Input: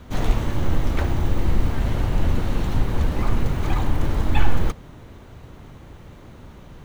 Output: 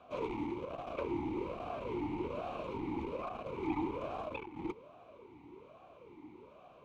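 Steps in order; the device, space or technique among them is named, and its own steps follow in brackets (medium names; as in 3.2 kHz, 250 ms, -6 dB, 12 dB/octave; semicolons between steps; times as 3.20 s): talk box (valve stage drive 11 dB, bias 0.3; talking filter a-u 1.2 Hz); trim +3.5 dB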